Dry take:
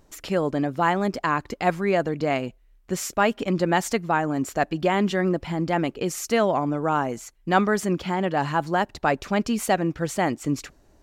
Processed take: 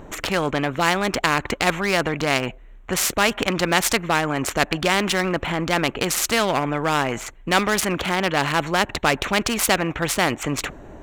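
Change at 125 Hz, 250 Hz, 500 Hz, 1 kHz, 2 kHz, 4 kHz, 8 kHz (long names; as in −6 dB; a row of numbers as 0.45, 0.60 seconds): +1.0, −0.5, +0.5, +1.5, +7.0, +12.0, +9.5 decibels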